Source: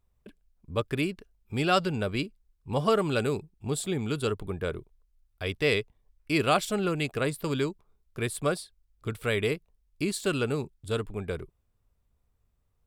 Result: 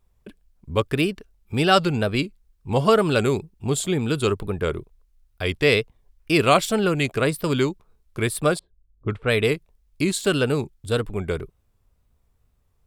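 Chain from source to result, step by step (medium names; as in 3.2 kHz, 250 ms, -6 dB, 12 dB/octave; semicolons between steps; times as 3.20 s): 8.59–9.45 s: level-controlled noise filter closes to 340 Hz, open at -23 dBFS; wow and flutter 93 cents; trim +7 dB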